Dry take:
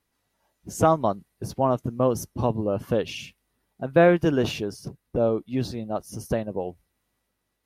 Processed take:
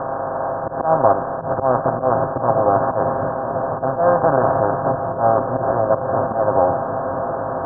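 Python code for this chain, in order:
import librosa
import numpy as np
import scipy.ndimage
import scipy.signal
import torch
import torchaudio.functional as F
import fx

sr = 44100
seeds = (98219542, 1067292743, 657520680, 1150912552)

y = fx.bin_compress(x, sr, power=0.2)
y = scipy.signal.sosfilt(scipy.signal.butter(12, 1500.0, 'lowpass', fs=sr, output='sos'), y)
y = fx.low_shelf_res(y, sr, hz=520.0, db=-6.5, q=1.5)
y = y + 0.47 * np.pad(y, (int(7.5 * sr / 1000.0), 0))[:len(y)]
y = fx.auto_swell(y, sr, attack_ms=117.0)
y = fx.echo_opening(y, sr, ms=502, hz=200, octaves=1, feedback_pct=70, wet_db=-6)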